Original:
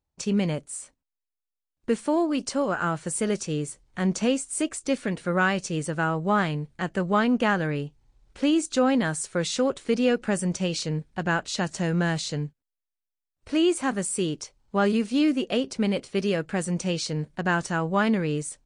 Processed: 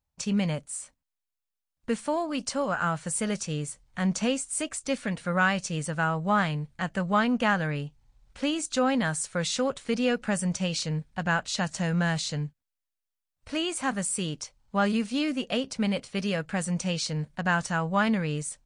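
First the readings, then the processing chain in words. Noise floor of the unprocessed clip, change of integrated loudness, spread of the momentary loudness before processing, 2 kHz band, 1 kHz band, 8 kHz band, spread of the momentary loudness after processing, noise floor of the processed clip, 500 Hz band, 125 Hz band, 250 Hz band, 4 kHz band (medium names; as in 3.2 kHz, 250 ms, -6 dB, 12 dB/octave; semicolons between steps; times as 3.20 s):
under -85 dBFS, -2.5 dB, 7 LU, 0.0 dB, -0.5 dB, 0.0 dB, 7 LU, under -85 dBFS, -4.5 dB, -1.0 dB, -3.5 dB, 0.0 dB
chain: peaking EQ 360 Hz -12 dB 0.63 oct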